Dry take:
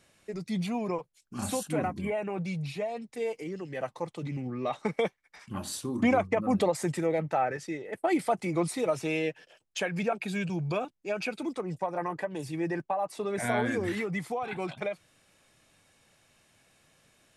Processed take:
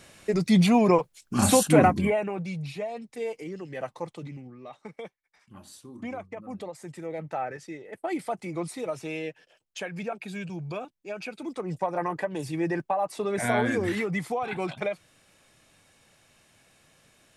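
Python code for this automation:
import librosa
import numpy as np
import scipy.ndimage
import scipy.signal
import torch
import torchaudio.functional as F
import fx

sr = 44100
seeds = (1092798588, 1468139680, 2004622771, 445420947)

y = fx.gain(x, sr, db=fx.line((1.88, 12.0), (2.41, 0.0), (4.13, 0.0), (4.57, -12.0), (6.82, -12.0), (7.3, -4.0), (11.35, -4.0), (11.75, 3.5)))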